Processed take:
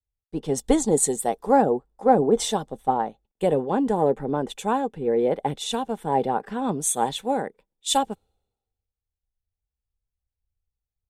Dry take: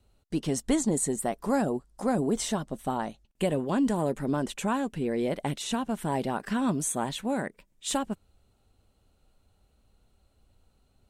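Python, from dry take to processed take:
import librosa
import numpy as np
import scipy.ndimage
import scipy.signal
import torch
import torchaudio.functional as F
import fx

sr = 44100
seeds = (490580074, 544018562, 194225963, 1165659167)

y = fx.small_body(x, sr, hz=(470.0, 790.0, 3500.0), ring_ms=25, db=12)
y = fx.band_widen(y, sr, depth_pct=100)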